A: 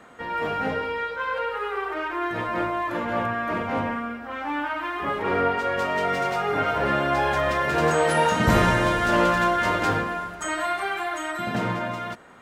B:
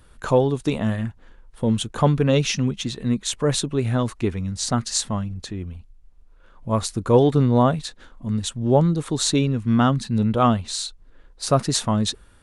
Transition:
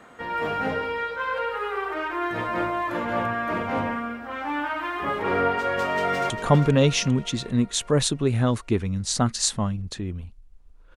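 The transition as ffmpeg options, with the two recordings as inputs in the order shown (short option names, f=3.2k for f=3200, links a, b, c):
-filter_complex "[0:a]apad=whole_dur=10.96,atrim=end=10.96,atrim=end=6.302[a];[1:a]atrim=start=1.818:end=6.48[b];[a][b]acrossfade=d=0.004:c1=hsin:c2=hsin,asplit=2[c][d];[d]afade=t=in:st=5.87:d=0.01,afade=t=out:st=6.3:d=0.01,aecho=0:1:400|800|1200|1600|2000|2400:0.375837|0.187919|0.0939594|0.0469797|0.0234898|0.0117449[e];[c][e]amix=inputs=2:normalize=0"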